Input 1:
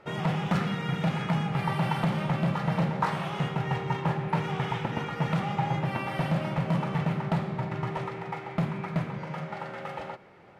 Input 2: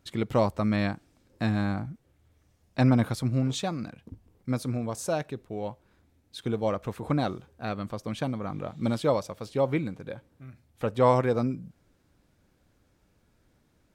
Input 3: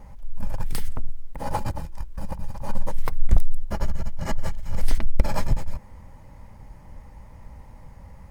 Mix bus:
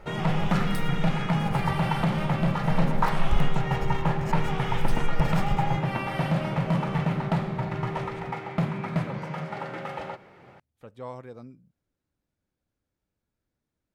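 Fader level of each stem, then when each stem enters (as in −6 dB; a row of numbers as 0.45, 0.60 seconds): +2.0, −17.5, −7.0 decibels; 0.00, 0.00, 0.00 seconds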